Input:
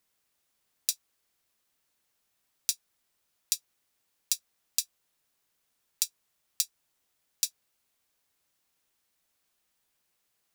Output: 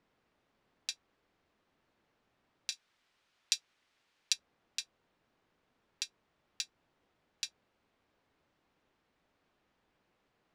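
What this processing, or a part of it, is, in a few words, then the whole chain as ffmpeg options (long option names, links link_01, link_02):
phone in a pocket: -filter_complex "[0:a]asettb=1/sr,asplit=3[link_01][link_02][link_03];[link_01]atrim=end=2.724[link_04];[link_02]atrim=start=2.72:end=4.33,asetpts=PTS-STARTPTS,afade=type=in:duration=0.004:curve=qsin,afade=type=out:start_time=1.606:duration=0.004:curve=qsin,tiltshelf=frequency=1200:gain=-8.5[link_05];[link_03]atrim=start=4.326[link_06];[link_04][link_05]acrossfade=duration=0.004:curve1=hsin:curve2=qsin[link_07];[link_07][link_06]acrossfade=duration=0.004:curve1=qsin:curve2=hsin,lowpass=3800,equalizer=frequency=280:width_type=o:width=2:gain=3.5,highshelf=frequency=2200:gain=-12,volume=9.5dB"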